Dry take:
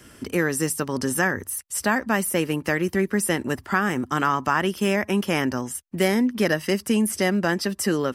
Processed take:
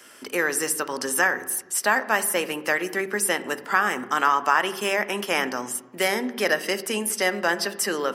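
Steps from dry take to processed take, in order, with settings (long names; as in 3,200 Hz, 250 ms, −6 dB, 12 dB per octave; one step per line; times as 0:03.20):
high-pass filter 530 Hz 12 dB per octave
on a send: high-frequency loss of the air 290 metres + convolution reverb RT60 1.1 s, pre-delay 3 ms, DRR 12 dB
on the sum: level +2.5 dB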